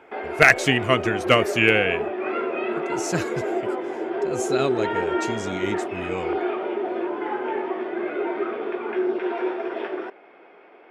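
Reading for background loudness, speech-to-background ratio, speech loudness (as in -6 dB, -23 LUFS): -27.0 LUFS, 5.0 dB, -22.0 LUFS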